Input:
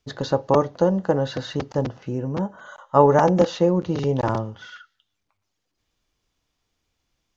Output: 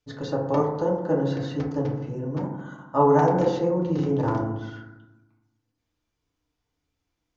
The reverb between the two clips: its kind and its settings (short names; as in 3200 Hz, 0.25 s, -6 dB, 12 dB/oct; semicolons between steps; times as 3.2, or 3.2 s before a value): FDN reverb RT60 1 s, low-frequency decay 1.4×, high-frequency decay 0.25×, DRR -3 dB; gain -9.5 dB